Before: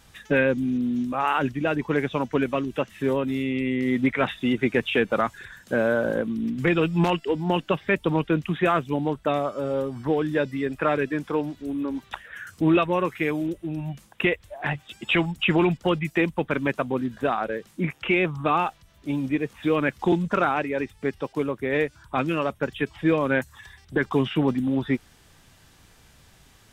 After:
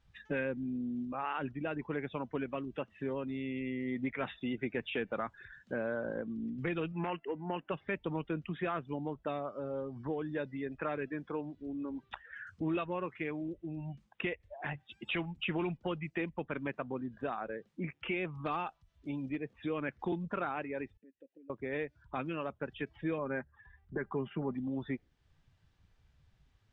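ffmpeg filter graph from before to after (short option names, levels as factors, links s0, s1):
-filter_complex "[0:a]asettb=1/sr,asplit=3[s0][s1][s2];[s0]atrim=end=6.924[s3];[s1]atrim=start=6.92:end=7.72,asetpts=PTS-STARTPTS,afade=t=in:d=0.004:c=qsin,afade=t=out:st=0.796:d=0.004:c=qsin,lowpass=f=2000:t=q:w=1.6,lowshelf=f=140:g=-9.5[s4];[s2]atrim=start=7.716[s5];[s3][s4]acrossfade=d=0.004:c1=hsin:c2=qsin[s6];[s6][s5]acrossfade=d=0.004:c1=qsin:c2=hsin,asettb=1/sr,asplit=3[s7][s8][s9];[s7]atrim=end=18.304[s10];[s8]atrim=start=18.3:end=19.37,asetpts=PTS-STARTPTS,afade=t=in:d=0.004:c=qsin,afade=t=out:st=1.066:d=0.004:c=qsin,highshelf=f=6500:g=11.5,aeval=exprs='clip(val(0),-1,0.133)':c=same[s11];[s9]atrim=start=19.366[s12];[s10][s11]acrossfade=d=0.004:c1=hsin:c2=qsin[s13];[s13][s12]acrossfade=d=0.004:c1=qsin:c2=hsin,asettb=1/sr,asplit=3[s14][s15][s16];[s14]atrim=end=20.974[s17];[s15]atrim=start=20.97:end=21.5,asetpts=PTS-STARTPTS,afade=t=in:d=0.004:c=qsin,afade=t=out:st=0.526:d=0.004:c=qsin,lowshelf=f=360:t=q:w=3:g=8.5,acompressor=threshold=0.0316:ratio=6:attack=3.2:release=140:knee=1:detection=peak,asplit=3[s18][s19][s20];[s18]bandpass=f=530:t=q:w=8,volume=1[s21];[s19]bandpass=f=1840:t=q:w=8,volume=0.501[s22];[s20]bandpass=f=2480:t=q:w=8,volume=0.355[s23];[s21][s22][s23]amix=inputs=3:normalize=0[s24];[s16]atrim=start=21.496[s25];[s17][s24]acrossfade=d=0.004:c1=hsin:c2=qsin[s26];[s26][s25]acrossfade=d=0.004:c1=qsin:c2=hsin,asettb=1/sr,asplit=3[s27][s28][s29];[s27]atrim=end=23.184[s30];[s28]atrim=start=23.18:end=24.54,asetpts=PTS-STARTPTS,afade=t=in:d=0.004:c=qsin,afade=t=out:st=1.356:d=0.004:c=qsin,lowpass=1800,aecho=1:1:5:0.36,atrim=end_sample=59976[s31];[s29]atrim=start=24.536[s32];[s30][s31]acrossfade=d=0.004:c1=hsin:c2=qsin[s33];[s33][s32]acrossfade=d=0.004:c1=qsin:c2=hsin,afftdn=nr=14:nf=-43,lowpass=4500,acompressor=threshold=0.0126:ratio=1.5,volume=0.473"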